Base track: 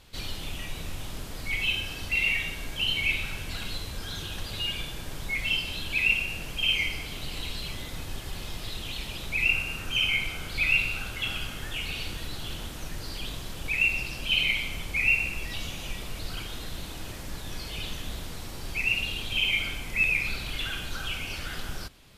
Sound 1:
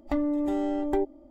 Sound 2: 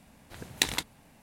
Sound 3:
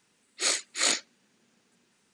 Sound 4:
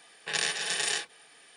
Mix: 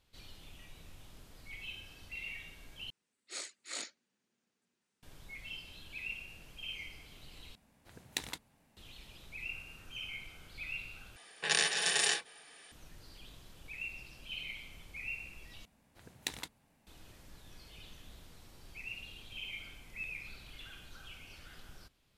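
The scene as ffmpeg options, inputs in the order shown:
ffmpeg -i bed.wav -i cue0.wav -i cue1.wav -i cue2.wav -i cue3.wav -filter_complex "[2:a]asplit=2[link_01][link_02];[0:a]volume=-18dB,asplit=5[link_03][link_04][link_05][link_06][link_07];[link_03]atrim=end=2.904[link_08];[3:a]atrim=end=2.13,asetpts=PTS-STARTPTS,volume=-16.5dB[link_09];[link_04]atrim=start=5.026:end=7.554[link_10];[link_01]atrim=end=1.22,asetpts=PTS-STARTPTS,volume=-11.5dB[link_11];[link_05]atrim=start=8.766:end=11.164[link_12];[4:a]atrim=end=1.56,asetpts=PTS-STARTPTS,volume=-0.5dB[link_13];[link_06]atrim=start=12.716:end=15.654[link_14];[link_02]atrim=end=1.22,asetpts=PTS-STARTPTS,volume=-12.5dB[link_15];[link_07]atrim=start=16.866[link_16];[link_08][link_09]acrossfade=duration=0.004:curve1=hsin:curve2=hsin[link_17];[link_17][link_10]acrossfade=duration=0.004:curve1=hsin:curve2=hsin[link_18];[link_18][link_11]acrossfade=duration=0.004:curve1=hsin:curve2=hsin[link_19];[link_19][link_12]acrossfade=duration=0.004:curve1=hsin:curve2=hsin[link_20];[link_20][link_13]acrossfade=duration=0.004:curve1=hsin:curve2=hsin[link_21];[link_21][link_14]acrossfade=duration=0.004:curve1=hsin:curve2=hsin[link_22];[link_22][link_15]acrossfade=duration=0.004:curve1=hsin:curve2=hsin[link_23];[link_23][link_16]acrossfade=duration=0.004:curve1=hsin:curve2=hsin" out.wav

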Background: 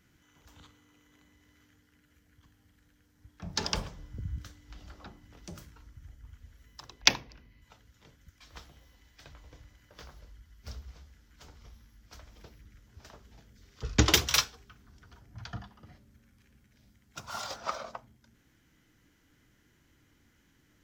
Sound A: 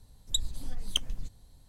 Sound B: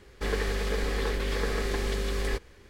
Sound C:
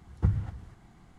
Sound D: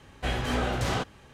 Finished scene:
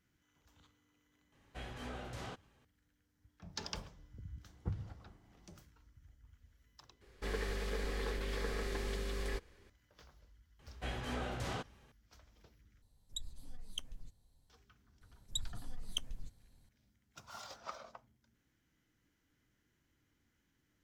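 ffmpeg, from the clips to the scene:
ffmpeg -i bed.wav -i cue0.wav -i cue1.wav -i cue2.wav -i cue3.wav -filter_complex "[4:a]asplit=2[link_01][link_02];[1:a]asplit=2[link_03][link_04];[0:a]volume=-11.5dB[link_05];[3:a]equalizer=frequency=500:width_type=o:width=1.9:gain=6.5[link_06];[link_05]asplit=3[link_07][link_08][link_09];[link_07]atrim=end=7.014[link_10];[2:a]atrim=end=2.69,asetpts=PTS-STARTPTS,volume=-9.5dB[link_11];[link_08]atrim=start=9.696:end=12.824[link_12];[link_03]atrim=end=1.68,asetpts=PTS-STARTPTS,volume=-14dB[link_13];[link_09]atrim=start=14.496[link_14];[link_01]atrim=end=1.33,asetpts=PTS-STARTPTS,volume=-17.5dB,afade=type=in:duration=0.004:curve=hsin,afade=type=out:start_time=1.326:duration=0.004:curve=hsin,adelay=1320[link_15];[link_06]atrim=end=1.18,asetpts=PTS-STARTPTS,volume=-14.5dB,afade=type=in:duration=0.004:curve=hsin,afade=type=out:start_time=1.176:duration=0.004:curve=hsin,adelay=4430[link_16];[link_02]atrim=end=1.33,asetpts=PTS-STARTPTS,volume=-12dB,afade=type=in:duration=0.004:curve=hsin,afade=type=out:start_time=1.326:duration=0.004:curve=hsin,adelay=10590[link_17];[link_04]atrim=end=1.68,asetpts=PTS-STARTPTS,volume=-9.5dB,afade=type=in:duration=0.004:curve=hsin,afade=type=out:start_time=1.676:duration=0.004:curve=hsin,adelay=15010[link_18];[link_10][link_11]acrossfade=duration=0.004:curve1=hsin:curve2=hsin[link_19];[link_19][link_12]acrossfade=duration=0.004:curve1=hsin:curve2=hsin[link_20];[link_20][link_13]acrossfade=duration=0.004:curve1=hsin:curve2=hsin[link_21];[link_21][link_14]acrossfade=duration=0.004:curve1=hsin:curve2=hsin[link_22];[link_22][link_15][link_16][link_17][link_18]amix=inputs=5:normalize=0" out.wav

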